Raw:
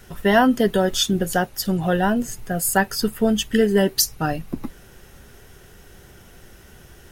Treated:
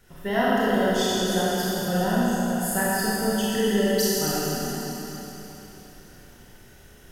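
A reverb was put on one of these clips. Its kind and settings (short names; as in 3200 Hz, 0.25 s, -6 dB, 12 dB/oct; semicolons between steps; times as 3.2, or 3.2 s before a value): Schroeder reverb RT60 3.8 s, combs from 26 ms, DRR -8.5 dB; gain -12 dB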